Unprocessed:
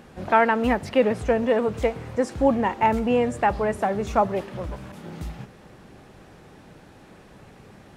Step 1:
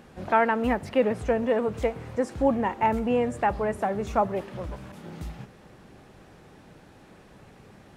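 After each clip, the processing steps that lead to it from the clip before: dynamic bell 4.7 kHz, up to -4 dB, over -42 dBFS, Q 0.8; trim -3 dB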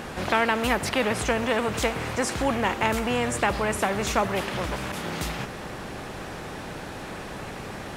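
spectrum-flattening compressor 2:1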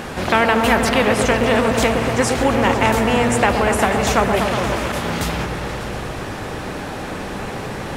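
delay with an opening low-pass 120 ms, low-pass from 750 Hz, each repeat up 1 oct, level -3 dB; trim +6.5 dB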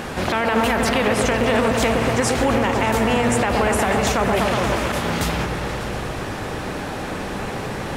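peak limiter -9 dBFS, peak gain reduction 7.5 dB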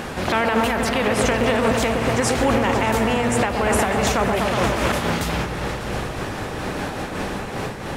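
random flutter of the level, depth 65%; trim +3 dB

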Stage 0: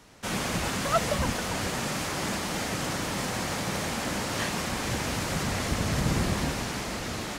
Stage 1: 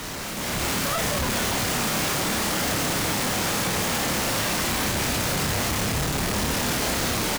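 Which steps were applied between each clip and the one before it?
one-bit comparator; level rider gain up to 8.5 dB; doubling 29 ms -4 dB; trim -5 dB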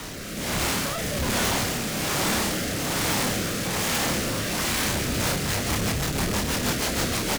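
rotary cabinet horn 1.2 Hz, later 6.3 Hz, at 4.87 s; trim +1.5 dB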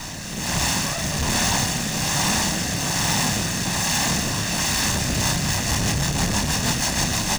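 comb filter that takes the minimum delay 1.1 ms; fifteen-band graphic EQ 160 Hz +4 dB, 6.3 kHz +7 dB, 16 kHz -8 dB; trim +3.5 dB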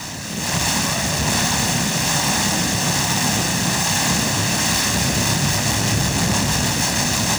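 high-pass 77 Hz; peak limiter -13 dBFS, peak gain reduction 4.5 dB; echo whose repeats swap between lows and highs 120 ms, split 1.1 kHz, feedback 82%, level -6.5 dB; trim +3.5 dB

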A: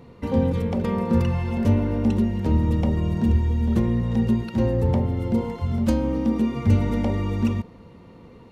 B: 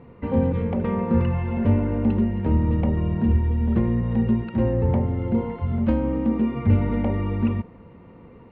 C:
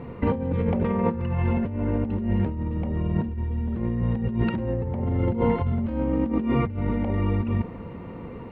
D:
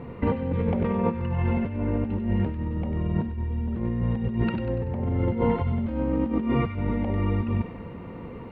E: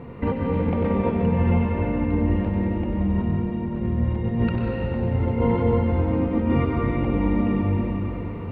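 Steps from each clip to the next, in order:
low-pass 2.6 kHz 24 dB/octave
compressor with a negative ratio -28 dBFS, ratio -1; trim +3 dB
feedback echo behind a high-pass 96 ms, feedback 52%, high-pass 1.7 kHz, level -5.5 dB; trim -1 dB
reverberation RT60 3.7 s, pre-delay 119 ms, DRR -1.5 dB

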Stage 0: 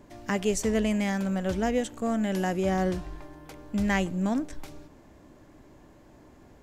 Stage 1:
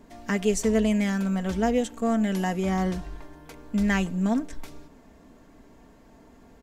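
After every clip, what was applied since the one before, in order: comb 4.4 ms, depth 53%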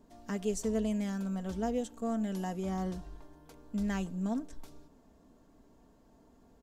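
peaking EQ 2.1 kHz -8.5 dB 0.88 oct; trim -9 dB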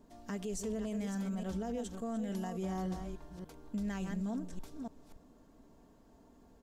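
chunks repeated in reverse 287 ms, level -9 dB; peak limiter -30 dBFS, peak gain reduction 10 dB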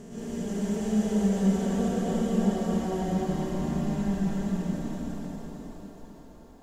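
spectral blur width 1380 ms; plate-style reverb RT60 2.2 s, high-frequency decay 0.8×, pre-delay 110 ms, DRR -9.5 dB; trim +4 dB

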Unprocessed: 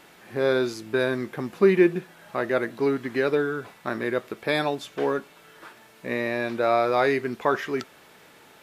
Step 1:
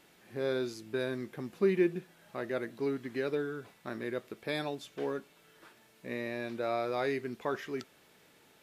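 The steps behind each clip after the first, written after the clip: peaking EQ 1.1 kHz -5.5 dB 2 oct; trim -8 dB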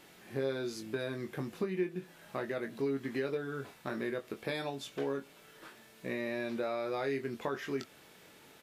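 compression 4:1, threshold -37 dBFS, peak gain reduction 13 dB; doubling 22 ms -6.5 dB; trim +4 dB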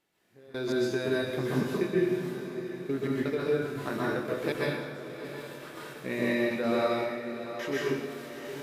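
trance gate "...x.x.xx.xx." 83 bpm -24 dB; echo that smears into a reverb 705 ms, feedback 49%, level -10 dB; reverberation RT60 1.0 s, pre-delay 118 ms, DRR -5.5 dB; trim +3.5 dB

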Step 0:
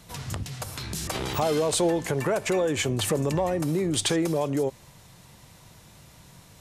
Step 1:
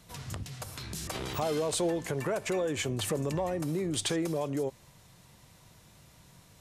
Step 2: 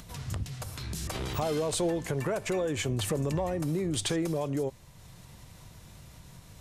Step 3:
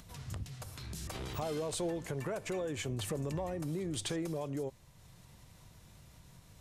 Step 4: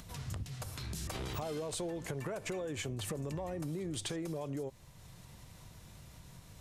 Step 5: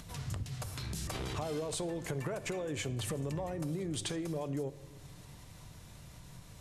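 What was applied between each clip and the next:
band-stop 850 Hz, Q 24; trim -6 dB
bass shelf 95 Hz +11 dB; upward compressor, threshold -43 dBFS
pre-echo 251 ms -24 dB; trim -7 dB
compression, threshold -39 dBFS, peak gain reduction 7.5 dB; trim +3.5 dB
brick-wall FIR low-pass 13 kHz; simulated room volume 2000 m³, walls mixed, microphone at 0.36 m; trim +1.5 dB

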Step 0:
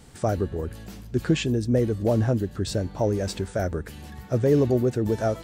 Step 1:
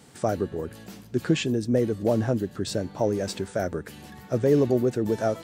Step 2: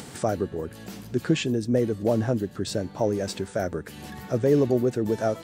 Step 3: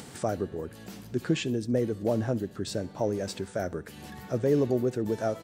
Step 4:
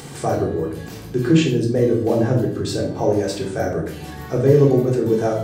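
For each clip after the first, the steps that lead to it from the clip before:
high-pass 140 Hz 12 dB/octave
upward compressor, threshold -31 dBFS
feedback delay 66 ms, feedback 52%, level -24 dB; trim -4 dB
simulated room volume 870 m³, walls furnished, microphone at 3.7 m; trim +4.5 dB

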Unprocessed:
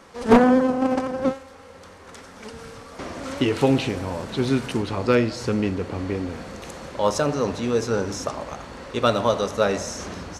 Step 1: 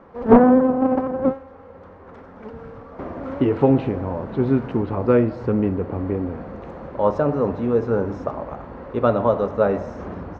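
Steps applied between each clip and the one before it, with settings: low-pass 1.1 kHz 12 dB/octave; trim +3 dB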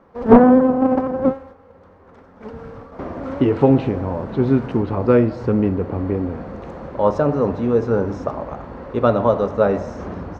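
gate -40 dBFS, range -7 dB; tone controls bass +1 dB, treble +7 dB; trim +2 dB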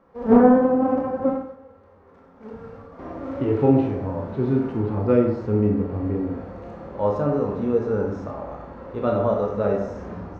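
harmonic-percussive split percussive -10 dB; on a send at -2 dB: reverberation RT60 0.65 s, pre-delay 17 ms; on the sum: trim -4 dB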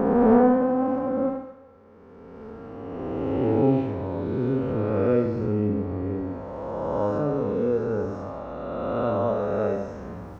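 reverse spectral sustain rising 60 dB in 2.66 s; feedback echo behind a high-pass 70 ms, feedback 70%, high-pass 2.1 kHz, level -10 dB; trim -6 dB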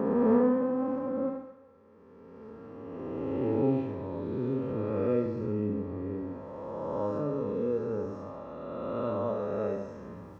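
high-pass 68 Hz; comb of notches 730 Hz; trim -6 dB

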